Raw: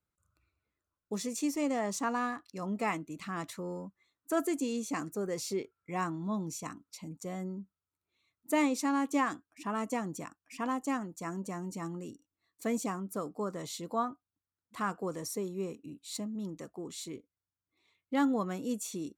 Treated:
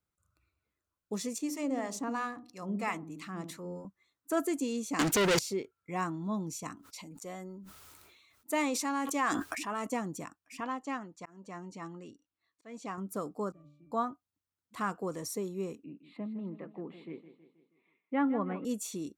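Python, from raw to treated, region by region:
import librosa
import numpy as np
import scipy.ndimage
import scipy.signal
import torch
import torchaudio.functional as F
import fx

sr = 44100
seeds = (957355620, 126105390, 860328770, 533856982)

y = fx.chain(x, sr, fx.harmonic_tremolo(hz=3.0, depth_pct=70, crossover_hz=650.0),
    fx.echo_wet_lowpass(ms=63, feedback_pct=33, hz=410.0, wet_db=-4.5), at=(1.38, 3.85))
y = fx.chain(y, sr, fx.leveller(passes=5),
    fx.peak_eq(hz=3400.0, db=10.5, octaves=2.5), at=(4.99, 5.39))
y = fx.chain(y, sr, fx.peak_eq(hz=130.0, db=-9.5, octaves=2.5),
    fx.sustainer(db_per_s=27.0), at=(6.75, 9.87))
y = fx.chain(y, sr, fx.lowpass(hz=4500.0, slope=12),
    fx.low_shelf(hz=490.0, db=-7.5),
    fx.auto_swell(attack_ms=311.0), at=(10.6, 12.98))
y = fx.chain(y, sr, fx.octave_resonator(note='D', decay_s=0.46),
    fx.band_squash(depth_pct=100), at=(13.52, 13.92))
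y = fx.chain(y, sr, fx.ellip_bandpass(low_hz=160.0, high_hz=2500.0, order=3, stop_db=40),
    fx.echo_feedback(ms=160, feedback_pct=51, wet_db=-13), at=(15.84, 18.65))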